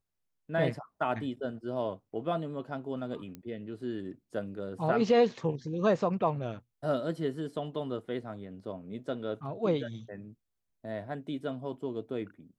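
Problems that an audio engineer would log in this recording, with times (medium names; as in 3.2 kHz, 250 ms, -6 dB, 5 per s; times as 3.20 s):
3.35 s: pop -28 dBFS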